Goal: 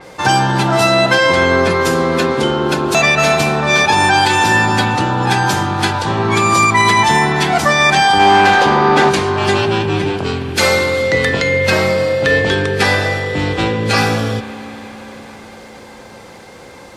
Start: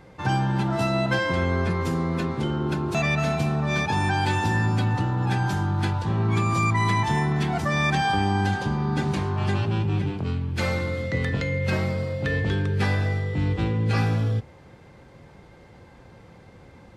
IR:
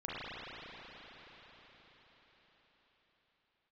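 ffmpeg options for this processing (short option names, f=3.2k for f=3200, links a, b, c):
-filter_complex "[0:a]asplit=3[a][b][c];[a]afade=t=out:st=8.18:d=0.02[d];[b]asplit=2[e][f];[f]highpass=f=720:p=1,volume=20dB,asoftclip=type=tanh:threshold=-12.5dB[g];[e][g]amix=inputs=2:normalize=0,lowpass=f=1.2k:p=1,volume=-6dB,afade=t=in:st=8.18:d=0.02,afade=t=out:st=9.09:d=0.02[h];[c]afade=t=in:st=9.09:d=0.02[i];[d][h][i]amix=inputs=3:normalize=0,bass=f=250:g=-13,treble=f=4k:g=9,asplit=2[j][k];[1:a]atrim=start_sample=2205[l];[k][l]afir=irnorm=-1:irlink=0,volume=-15.5dB[m];[j][m]amix=inputs=2:normalize=0,alimiter=level_in=15dB:limit=-1dB:release=50:level=0:latency=1,adynamicequalizer=threshold=0.0316:dfrequency=4900:dqfactor=0.7:tfrequency=4900:tqfactor=0.7:attack=5:release=100:ratio=0.375:range=2.5:mode=cutabove:tftype=highshelf,volume=-1dB"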